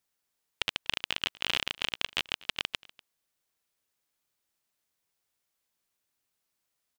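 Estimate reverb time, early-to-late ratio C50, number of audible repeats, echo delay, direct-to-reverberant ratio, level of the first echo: none, none, 1, 0.244 s, none, -22.5 dB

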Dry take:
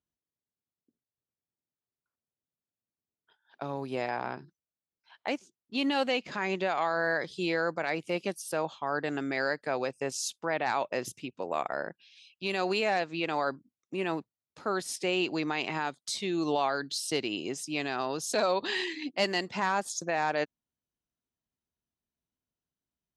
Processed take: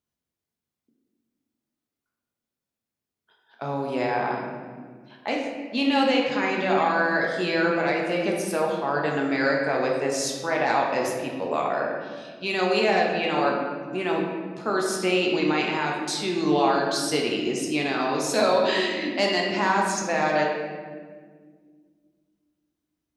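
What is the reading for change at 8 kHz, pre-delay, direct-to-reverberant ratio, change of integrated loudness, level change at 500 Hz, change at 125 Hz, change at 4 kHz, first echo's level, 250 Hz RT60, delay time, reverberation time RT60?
+5.0 dB, 5 ms, -1.5 dB, +7.0 dB, +8.0 dB, +7.5 dB, +6.0 dB, none, 3.0 s, none, 1.7 s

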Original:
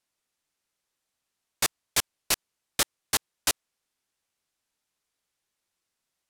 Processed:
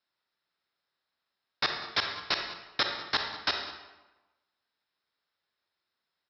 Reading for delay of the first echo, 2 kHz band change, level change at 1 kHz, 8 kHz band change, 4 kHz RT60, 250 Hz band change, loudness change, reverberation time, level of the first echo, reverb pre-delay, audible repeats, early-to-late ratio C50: 0.195 s, +1.5 dB, +2.0 dB, -25.0 dB, 0.80 s, -2.5 dB, -2.5 dB, 1.1 s, -17.0 dB, 36 ms, 1, 4.0 dB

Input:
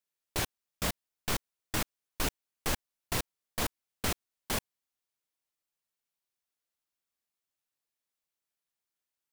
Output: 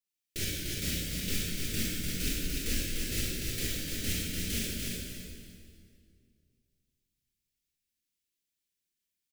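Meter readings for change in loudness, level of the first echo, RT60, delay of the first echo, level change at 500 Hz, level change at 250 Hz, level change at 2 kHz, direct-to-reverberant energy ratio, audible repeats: +2.5 dB, -3.5 dB, 2.2 s, 0.296 s, -2.5 dB, +4.5 dB, 0.0 dB, -7.5 dB, 1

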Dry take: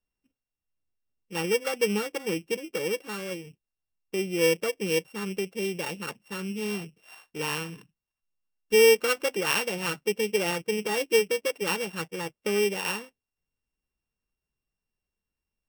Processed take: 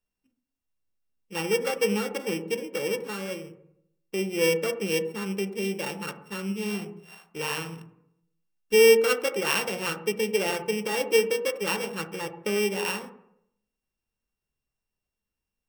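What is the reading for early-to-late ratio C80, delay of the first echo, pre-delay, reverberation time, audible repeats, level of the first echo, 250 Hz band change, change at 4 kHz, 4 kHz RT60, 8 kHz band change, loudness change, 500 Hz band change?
14.5 dB, none, 12 ms, 0.75 s, none, none, +1.0 dB, 0.0 dB, 0.50 s, 0.0 dB, +1.0 dB, +1.0 dB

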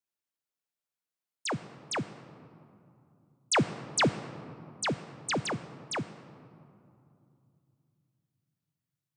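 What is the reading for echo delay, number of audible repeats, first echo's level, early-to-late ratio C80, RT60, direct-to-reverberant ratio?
none, none, none, 14.0 dB, 2.7 s, 12.0 dB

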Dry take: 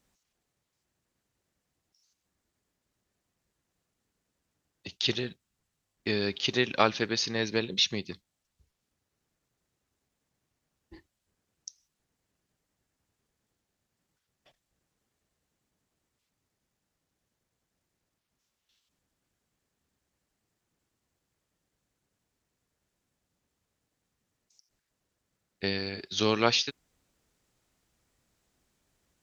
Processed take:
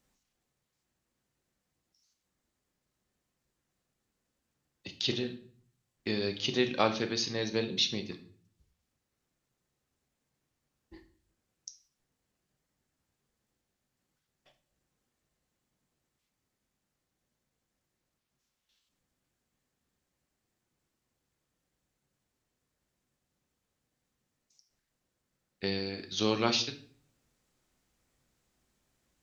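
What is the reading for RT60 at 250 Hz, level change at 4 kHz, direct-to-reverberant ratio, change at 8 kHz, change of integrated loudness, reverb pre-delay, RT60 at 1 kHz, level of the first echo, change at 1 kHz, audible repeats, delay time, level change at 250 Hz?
0.65 s, -3.0 dB, 6.0 dB, n/a, -3.0 dB, 4 ms, 0.45 s, none, -4.0 dB, none, none, -1.0 dB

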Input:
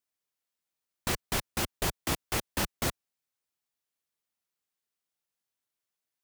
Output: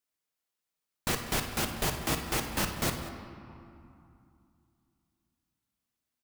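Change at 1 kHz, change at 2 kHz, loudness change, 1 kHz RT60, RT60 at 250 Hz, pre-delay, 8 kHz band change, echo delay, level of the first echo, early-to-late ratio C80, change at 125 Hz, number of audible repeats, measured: +1.5 dB, +1.0 dB, +0.5 dB, 2.8 s, 3.3 s, 4 ms, +0.5 dB, 56 ms, -12.5 dB, 7.5 dB, +1.5 dB, 2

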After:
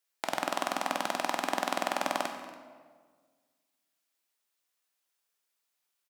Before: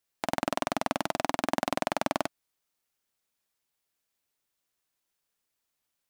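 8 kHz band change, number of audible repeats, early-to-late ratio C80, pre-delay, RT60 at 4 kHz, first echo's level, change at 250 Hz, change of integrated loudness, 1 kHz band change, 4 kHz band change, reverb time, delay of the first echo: +1.0 dB, 1, 8.0 dB, 11 ms, 1.1 s, -19.5 dB, -6.0 dB, -1.0 dB, 0.0 dB, +1.0 dB, 1.6 s, 0.284 s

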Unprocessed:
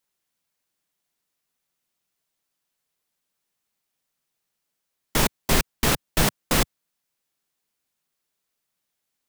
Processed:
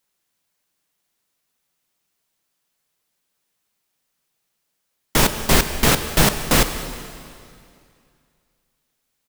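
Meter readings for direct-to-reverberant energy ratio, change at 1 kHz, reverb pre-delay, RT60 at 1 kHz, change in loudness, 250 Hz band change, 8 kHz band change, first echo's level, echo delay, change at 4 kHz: 8.5 dB, +5.5 dB, 7 ms, 2.4 s, +5.5 dB, +5.5 dB, +5.5 dB, -20.5 dB, 0.202 s, +5.5 dB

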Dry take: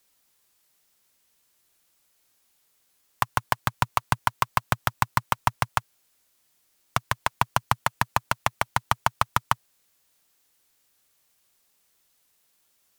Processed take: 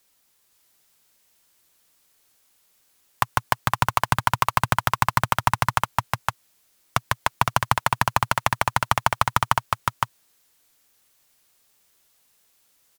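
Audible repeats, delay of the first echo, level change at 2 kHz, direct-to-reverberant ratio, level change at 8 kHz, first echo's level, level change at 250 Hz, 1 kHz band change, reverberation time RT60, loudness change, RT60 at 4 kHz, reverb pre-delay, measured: 1, 0.513 s, +4.5 dB, none, +4.5 dB, -3.0 dB, +4.5 dB, +4.5 dB, none, +3.5 dB, none, none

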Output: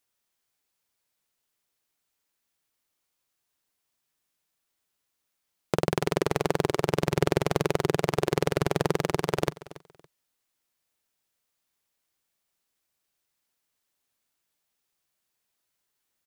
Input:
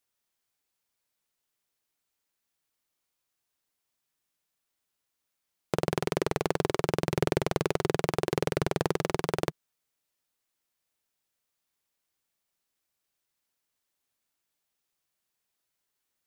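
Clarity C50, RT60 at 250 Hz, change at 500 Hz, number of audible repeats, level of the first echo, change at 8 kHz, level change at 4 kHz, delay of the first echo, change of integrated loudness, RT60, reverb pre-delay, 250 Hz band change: none, none, +2.5 dB, 2, -18.0 dB, +2.5 dB, +2.5 dB, 0.281 s, +2.5 dB, none, none, +2.5 dB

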